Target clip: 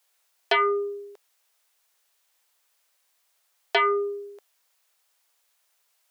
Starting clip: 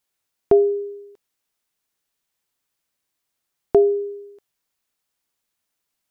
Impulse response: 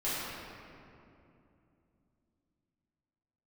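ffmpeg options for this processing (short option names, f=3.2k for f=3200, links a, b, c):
-filter_complex "[0:a]asplit=2[a][b];[b]aeval=exprs='0.562*sin(PI/2*5.62*val(0)/0.562)':c=same,volume=-6dB[c];[a][c]amix=inputs=2:normalize=0,highpass=f=500:w=0.5412,highpass=f=500:w=1.3066,volume=-6dB"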